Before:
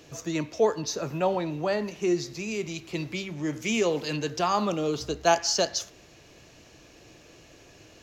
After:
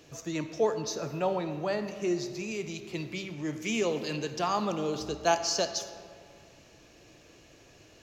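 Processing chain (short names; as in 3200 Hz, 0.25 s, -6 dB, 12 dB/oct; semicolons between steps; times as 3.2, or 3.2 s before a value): digital reverb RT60 2.3 s, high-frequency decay 0.55×, pre-delay 15 ms, DRR 10.5 dB; gain -4 dB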